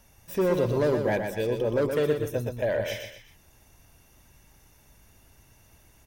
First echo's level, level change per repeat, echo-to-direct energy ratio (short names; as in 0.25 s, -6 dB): -6.0 dB, -8.0 dB, -5.5 dB